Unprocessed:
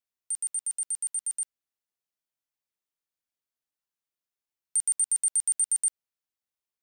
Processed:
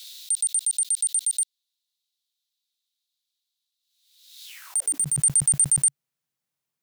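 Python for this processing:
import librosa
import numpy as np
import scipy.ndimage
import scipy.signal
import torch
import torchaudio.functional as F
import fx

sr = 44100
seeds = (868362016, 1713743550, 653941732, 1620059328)

y = fx.clip_asym(x, sr, top_db=-27.0, bottom_db=-25.0, at=(1.29, 5.2))
y = fx.filter_sweep_highpass(y, sr, from_hz=3800.0, to_hz=140.0, start_s=4.45, end_s=5.08, q=5.8)
y = fx.pre_swell(y, sr, db_per_s=62.0)
y = F.gain(torch.from_numpy(y), 5.5).numpy()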